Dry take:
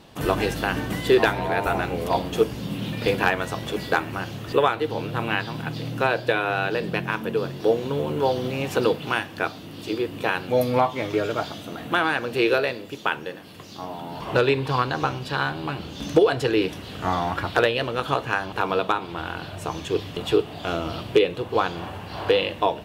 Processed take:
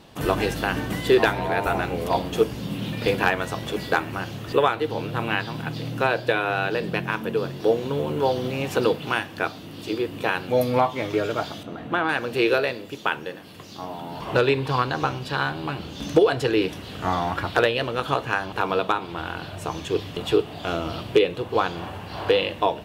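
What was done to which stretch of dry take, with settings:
11.63–12.09 LPF 1600 Hz 6 dB/oct

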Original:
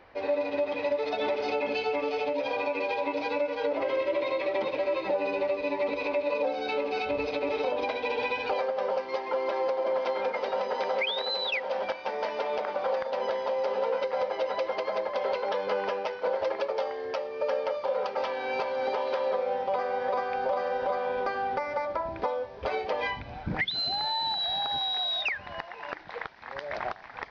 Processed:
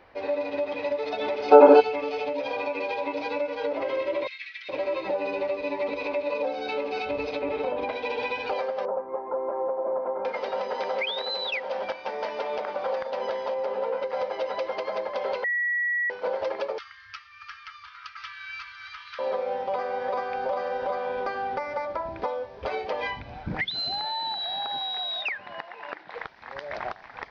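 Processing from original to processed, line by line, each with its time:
1.51–1.81 spectral gain 240–1700 Hz +18 dB
4.27–4.69 steep high-pass 1600 Hz 48 dB/oct
7.41–7.93 tone controls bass +5 dB, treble -13 dB
8.85–10.25 LPF 1200 Hz 24 dB/oct
13.54–14.1 high shelf 3200 Hz -9.5 dB
15.44–16.1 bleep 1930 Hz -23 dBFS
16.78–19.19 Chebyshev band-stop 100–1200 Hz, order 5
24.01–26.15 BPF 190–4600 Hz

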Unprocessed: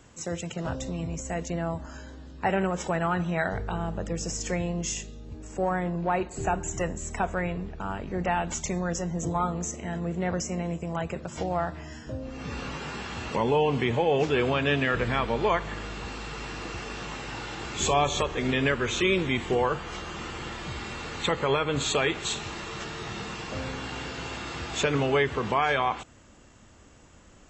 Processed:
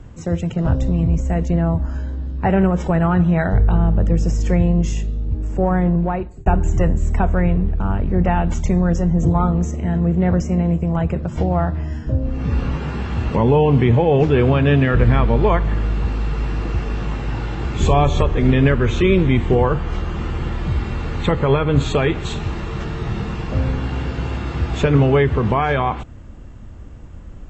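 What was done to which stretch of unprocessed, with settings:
5.94–6.46 fade out
whole clip: RIAA curve playback; gain +5 dB

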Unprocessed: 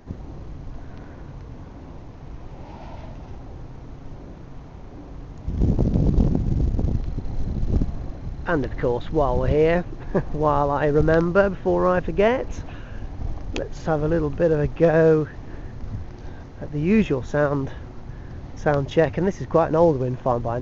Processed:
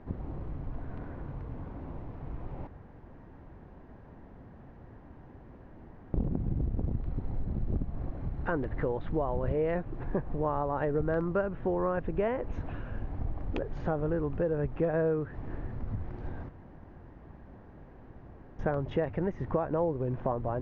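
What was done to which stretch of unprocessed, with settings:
2.67–6.14 room tone
16.49–18.59 room tone
whole clip: LPF 1900 Hz 12 dB/oct; compressor 3:1, threshold -27 dBFS; gain -2 dB

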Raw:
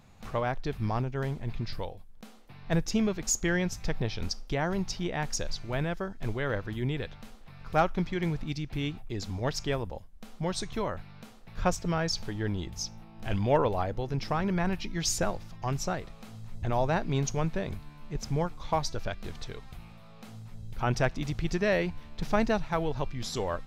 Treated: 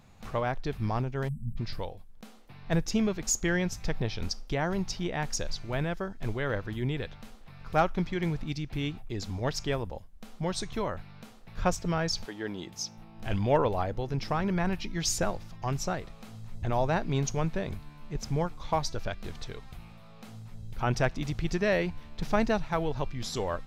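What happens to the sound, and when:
1.28–1.57 spectral delete 240–7600 Hz
12.24–12.97 HPF 350 Hz -> 130 Hz

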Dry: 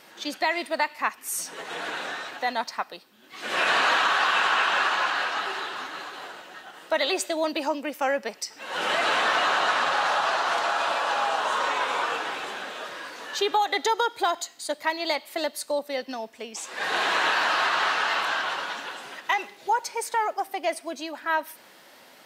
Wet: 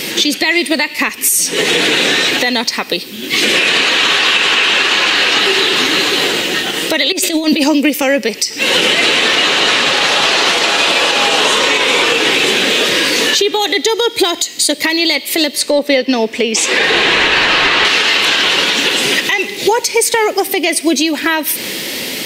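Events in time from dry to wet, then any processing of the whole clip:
7.12–7.64 negative-ratio compressor -36 dBFS
15.55–17.85 overdrive pedal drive 9 dB, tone 1400 Hz, clips at -11 dBFS
whole clip: band shelf 990 Hz -14.5 dB; compressor 6:1, threshold -42 dBFS; maximiser +34 dB; gain -1 dB

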